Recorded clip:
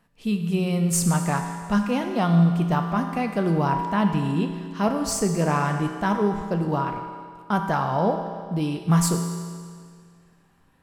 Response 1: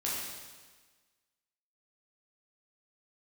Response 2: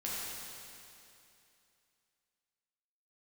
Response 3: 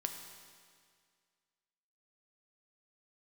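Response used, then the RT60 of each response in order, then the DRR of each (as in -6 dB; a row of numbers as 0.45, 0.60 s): 3; 1.4, 2.7, 2.0 s; -6.5, -7.5, 4.0 dB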